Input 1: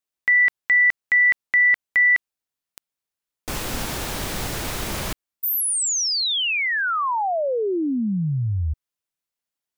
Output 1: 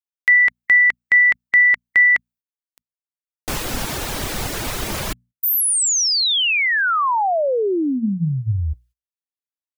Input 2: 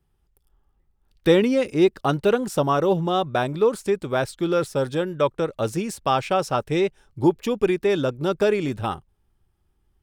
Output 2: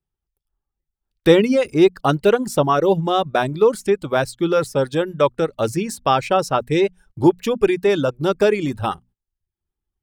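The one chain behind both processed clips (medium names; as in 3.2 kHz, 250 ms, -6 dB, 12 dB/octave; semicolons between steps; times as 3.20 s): hum notches 60/120/180/240 Hz; reverb removal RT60 0.66 s; gate -52 dBFS, range -18 dB; trim +4.5 dB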